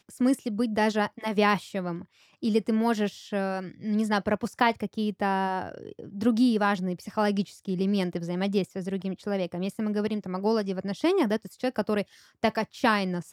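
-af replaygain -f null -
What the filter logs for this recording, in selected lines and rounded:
track_gain = +7.3 dB
track_peak = 0.232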